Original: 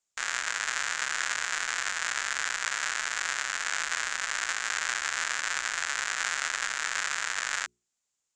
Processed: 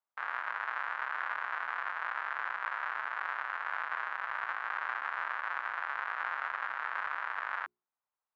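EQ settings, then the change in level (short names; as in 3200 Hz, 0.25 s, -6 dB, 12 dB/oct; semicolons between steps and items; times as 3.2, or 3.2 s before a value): band-pass 1000 Hz, Q 2; air absorption 370 m; +5.0 dB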